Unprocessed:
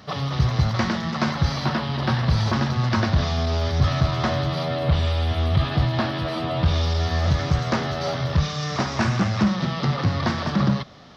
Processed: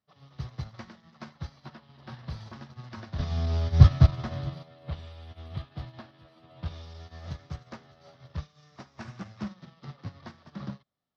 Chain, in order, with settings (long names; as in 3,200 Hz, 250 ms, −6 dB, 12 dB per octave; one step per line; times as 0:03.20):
0:03.19–0:04.63: low-shelf EQ 200 Hz +10.5 dB
expander for the loud parts 2.5 to 1, over −34 dBFS
level −1 dB